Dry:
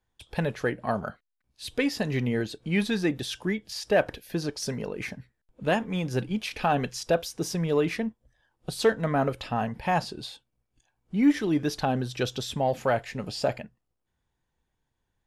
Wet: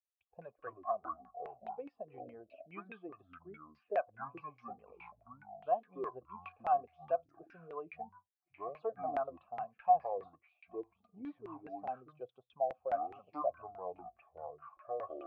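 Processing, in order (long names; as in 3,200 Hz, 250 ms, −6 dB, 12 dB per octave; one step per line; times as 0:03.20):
spectral dynamics exaggerated over time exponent 1.5
delay with pitch and tempo change per echo 91 ms, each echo −7 semitones, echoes 2
formant filter a
auto-filter low-pass saw down 4.8 Hz 360–2,100 Hz
level −3 dB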